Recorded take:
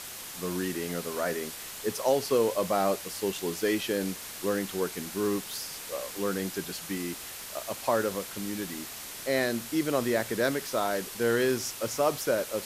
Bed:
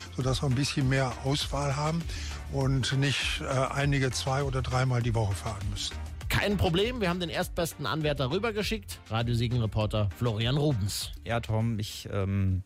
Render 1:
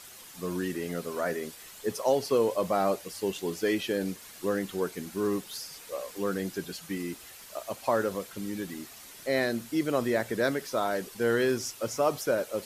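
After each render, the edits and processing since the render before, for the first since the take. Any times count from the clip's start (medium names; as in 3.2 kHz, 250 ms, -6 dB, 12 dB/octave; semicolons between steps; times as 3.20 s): noise reduction 9 dB, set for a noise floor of -41 dBFS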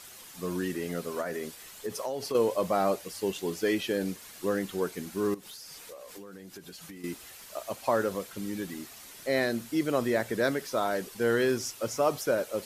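1.21–2.35 s: compression, threshold -29 dBFS; 5.34–7.04 s: compression 16:1, threshold -41 dBFS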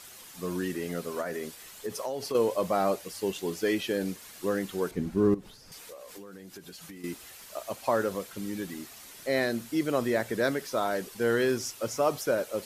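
4.91–5.72 s: tilt EQ -3.5 dB/octave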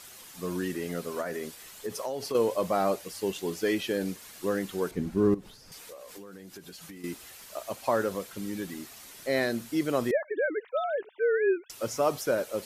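10.11–11.70 s: formants replaced by sine waves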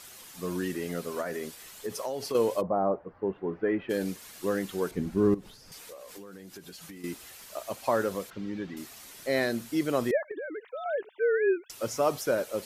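2.60–3.89 s: low-pass 1 kHz -> 2 kHz 24 dB/octave; 8.30–8.77 s: distance through air 200 m; 10.31–10.86 s: compression, threshold -34 dBFS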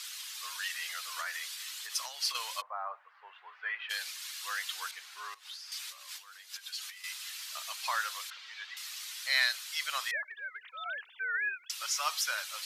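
inverse Chebyshev high-pass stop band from 320 Hz, stop band 60 dB; peaking EQ 3.9 kHz +10.5 dB 1.8 oct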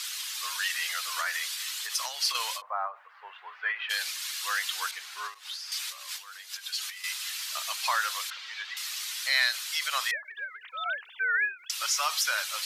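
in parallel at +2 dB: peak limiter -26 dBFS, peak gain reduction 11.5 dB; on the sum: endings held to a fixed fall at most 190 dB/s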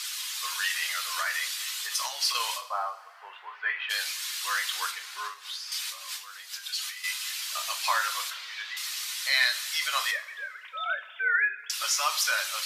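two-slope reverb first 0.34 s, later 1.9 s, from -18 dB, DRR 4.5 dB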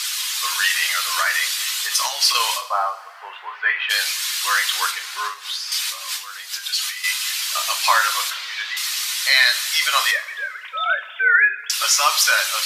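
trim +10 dB; peak limiter -2 dBFS, peak gain reduction 2.5 dB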